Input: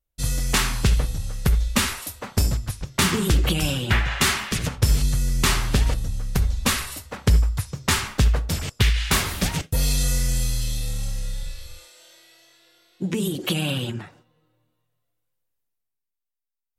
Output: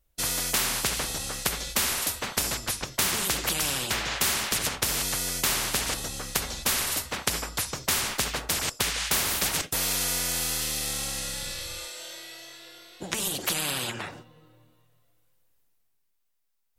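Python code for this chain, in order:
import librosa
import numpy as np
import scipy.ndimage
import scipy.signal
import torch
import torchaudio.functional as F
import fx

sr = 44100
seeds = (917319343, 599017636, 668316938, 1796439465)

y = fx.spectral_comp(x, sr, ratio=4.0)
y = F.gain(torch.from_numpy(y), 2.0).numpy()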